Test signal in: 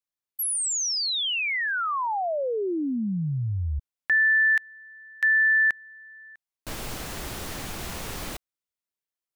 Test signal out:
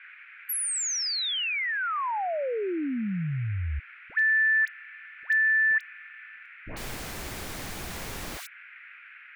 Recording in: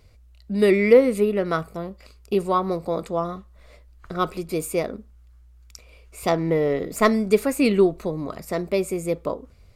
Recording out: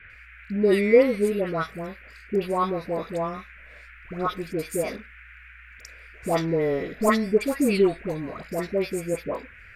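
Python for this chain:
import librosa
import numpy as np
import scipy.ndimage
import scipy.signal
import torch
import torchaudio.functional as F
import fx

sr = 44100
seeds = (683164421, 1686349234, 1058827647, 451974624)

y = fx.dispersion(x, sr, late='highs', ms=102.0, hz=1100.0)
y = fx.dmg_noise_band(y, sr, seeds[0], low_hz=1400.0, high_hz=2500.0, level_db=-46.0)
y = y * 10.0 ** (-2.5 / 20.0)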